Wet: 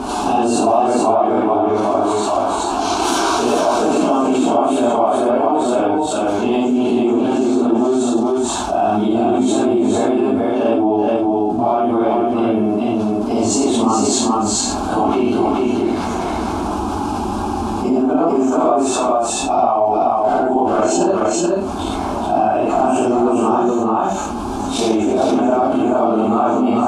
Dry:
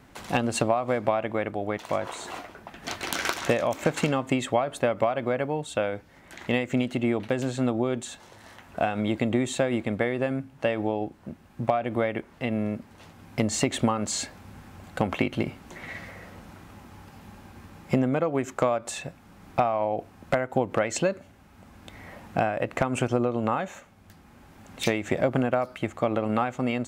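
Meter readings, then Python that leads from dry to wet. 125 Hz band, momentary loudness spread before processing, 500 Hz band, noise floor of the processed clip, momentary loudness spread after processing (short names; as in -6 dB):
+2.0 dB, 15 LU, +11.5 dB, -21 dBFS, 5 LU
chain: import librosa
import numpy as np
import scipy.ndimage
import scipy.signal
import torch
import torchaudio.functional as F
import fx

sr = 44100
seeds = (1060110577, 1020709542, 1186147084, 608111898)

p1 = fx.phase_scramble(x, sr, seeds[0], window_ms=200)
p2 = scipy.signal.sosfilt(scipy.signal.butter(4, 10000.0, 'lowpass', fs=sr, output='sos'), p1)
p3 = fx.peak_eq(p2, sr, hz=500.0, db=10.0, octaves=2.2)
p4 = fx.level_steps(p3, sr, step_db=15)
p5 = p3 + F.gain(torch.from_numpy(p4), 0.0).numpy()
p6 = fx.fixed_phaser(p5, sr, hz=520.0, stages=6)
p7 = p6 + 10.0 ** (-3.5 / 20.0) * np.pad(p6, (int(429 * sr / 1000.0), 0))[:len(p6)]
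p8 = fx.env_flatten(p7, sr, amount_pct=70)
y = F.gain(torch.from_numpy(p8), -1.5).numpy()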